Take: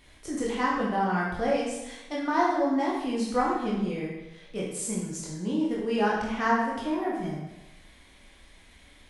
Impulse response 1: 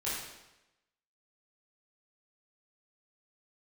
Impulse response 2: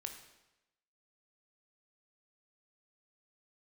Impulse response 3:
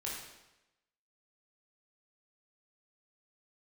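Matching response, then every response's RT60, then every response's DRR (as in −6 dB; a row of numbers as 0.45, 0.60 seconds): 3; 0.95, 0.95, 0.95 seconds; −10.0, 4.5, −5.0 decibels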